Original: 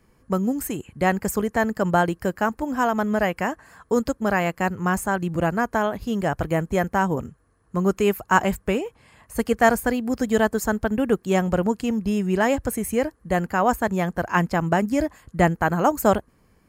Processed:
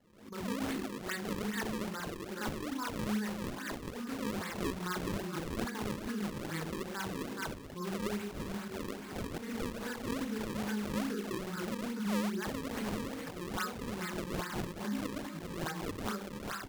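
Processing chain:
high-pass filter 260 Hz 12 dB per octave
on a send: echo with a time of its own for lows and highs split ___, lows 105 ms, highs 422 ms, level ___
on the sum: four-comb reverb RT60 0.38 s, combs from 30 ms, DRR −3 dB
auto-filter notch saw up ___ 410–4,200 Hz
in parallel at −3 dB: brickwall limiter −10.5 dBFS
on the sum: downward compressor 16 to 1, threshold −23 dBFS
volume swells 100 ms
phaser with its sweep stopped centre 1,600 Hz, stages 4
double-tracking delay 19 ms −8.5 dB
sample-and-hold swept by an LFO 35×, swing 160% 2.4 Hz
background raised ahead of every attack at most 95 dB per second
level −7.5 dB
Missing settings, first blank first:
1,200 Hz, −10.5 dB, 2 Hz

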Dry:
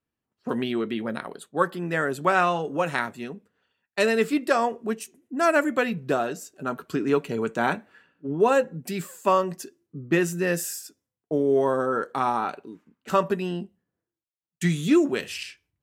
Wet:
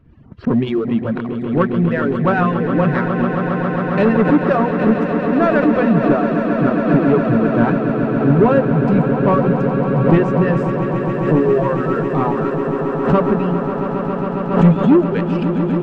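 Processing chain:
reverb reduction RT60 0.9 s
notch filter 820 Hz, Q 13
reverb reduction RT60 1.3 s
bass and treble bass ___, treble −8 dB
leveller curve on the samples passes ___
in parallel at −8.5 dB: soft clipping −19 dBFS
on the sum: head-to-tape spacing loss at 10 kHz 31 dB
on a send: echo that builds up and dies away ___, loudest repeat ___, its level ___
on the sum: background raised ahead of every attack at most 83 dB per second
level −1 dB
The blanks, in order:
+15 dB, 2, 136 ms, 8, −11 dB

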